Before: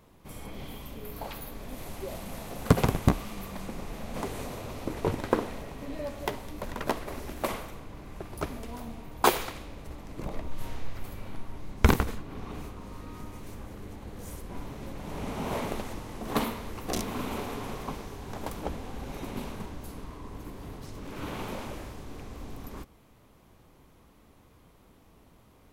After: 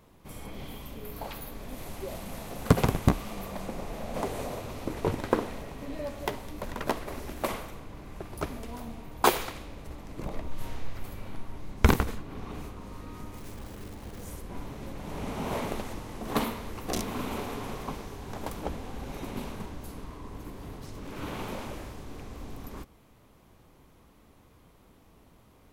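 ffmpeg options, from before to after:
ffmpeg -i in.wav -filter_complex "[0:a]asettb=1/sr,asplit=3[link_01][link_02][link_03];[link_01]atrim=end=3.264[link_04];[link_02]atrim=start=3.26:end=4.6,asetpts=PTS-STARTPTS,afade=type=in:duration=0.004:curve=qsin,afade=type=out:start_time=1.336:duration=0.004:curve=qsin,equalizer=frequency=620:width_type=o:width=0.99:gain=6[link_05];[link_03]atrim=start=4.596[link_06];[link_04][link_05]acrossfade=duration=0.004:curve1=hsin:curve2=qsin[link_07];[link_07][link_06]acrossfade=duration=0.004:curve1=qsin:curve2=hsin,asettb=1/sr,asplit=3[link_08][link_09][link_10];[link_08]atrim=end=13.344[link_11];[link_09]atrim=start=13.34:end=14.24,asetpts=PTS-STARTPTS,afade=type=in:duration=0.004:curve=qsin,afade=type=out:start_time=0.896:duration=0.004:curve=qsin,acrusher=bits=9:dc=4:mix=0:aa=0.000001[link_12];[link_10]atrim=start=14.236[link_13];[link_11][link_12]acrossfade=duration=0.004:curve1=hsin:curve2=qsin[link_14];[link_14][link_13]acrossfade=duration=0.004:curve1=qsin:curve2=hsin" out.wav

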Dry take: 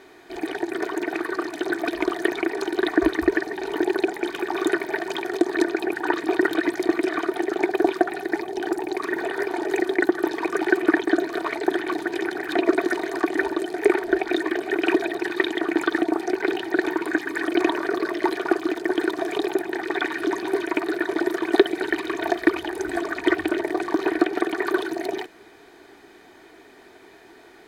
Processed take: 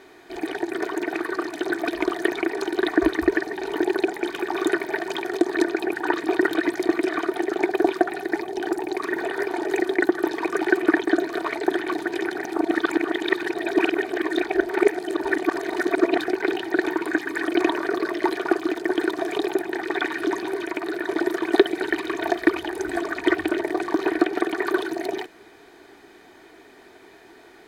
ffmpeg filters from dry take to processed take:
ffmpeg -i in.wav -filter_complex "[0:a]asettb=1/sr,asplit=3[link_01][link_02][link_03];[link_01]atrim=end=20.414[link_04];[link_02]atrim=start=20.41:end=21.04,asetpts=PTS-STARTPTS,afade=type=in:duration=0.004:curve=qsin,afade=type=out:start_time=0.626:duration=0.004:curve=qsin,acompressor=threshold=-24dB:ratio=2.5:attack=3.2:release=140:knee=1:detection=peak[link_05];[link_03]atrim=start=21.036[link_06];[link_04][link_05]acrossfade=duration=0.004:curve1=hsin:curve2=qsin[link_07];[link_07][link_06]acrossfade=duration=0.004:curve1=qsin:curve2=hsin,asplit=3[link_08][link_09][link_10];[link_08]atrim=end=12.452[link_11];[link_09]atrim=start=12.448:end=16.282,asetpts=PTS-STARTPTS,areverse[link_12];[link_10]atrim=start=16.278[link_13];[link_11][link_12]acrossfade=duration=0.004:curve1=hsin:curve2=hsin[link_14];[link_14][link_13]acrossfade=duration=0.004:curve1=hsin:curve2=hsin" out.wav

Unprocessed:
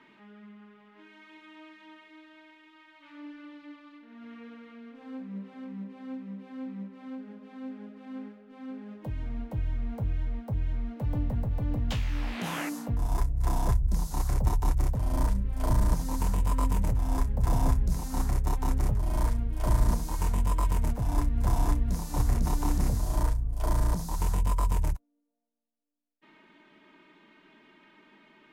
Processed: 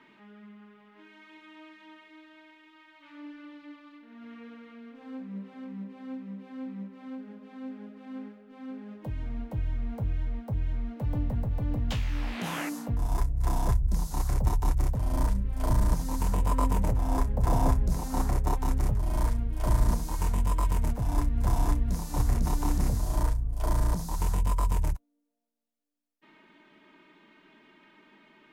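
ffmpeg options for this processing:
ffmpeg -i in.wav -filter_complex "[0:a]asettb=1/sr,asplit=3[link_01][link_02][link_03];[link_01]atrim=end=16.324[link_04];[link_02]atrim=start=16.32:end=18.58,asetpts=PTS-STARTPTS,afade=type=in:duration=0.004:curve=qsin,afade=type=out:start_time=2.256:duration=0.004:curve=qsin,equalizer=frequency=580:width_type=o:width=2.3:gain=5.5[link_05];[link_03]atrim=start=18.576[link_06];[link_04][link_05]acrossfade=duration=0.004:curve1=hsin:curve2=qsin[link_07];[link_07][link_06]acrossfade=duration=0.004:curve1=qsin:curve2=hsin" out.wav

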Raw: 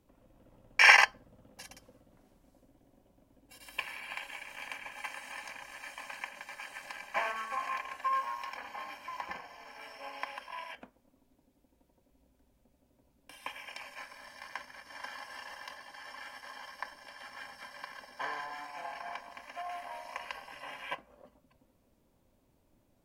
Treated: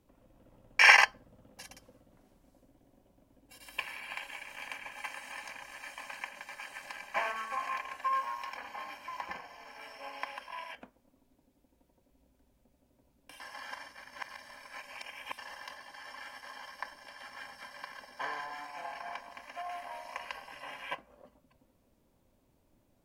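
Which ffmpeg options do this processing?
ffmpeg -i in.wav -filter_complex "[0:a]asplit=3[link_01][link_02][link_03];[link_01]atrim=end=13.402[link_04];[link_02]atrim=start=13.398:end=15.382,asetpts=PTS-STARTPTS,areverse[link_05];[link_03]atrim=start=15.378[link_06];[link_04][link_05]acrossfade=duration=0.004:curve1=hsin:curve2=hsin[link_07];[link_07][link_06]acrossfade=duration=0.004:curve1=hsin:curve2=hsin" out.wav

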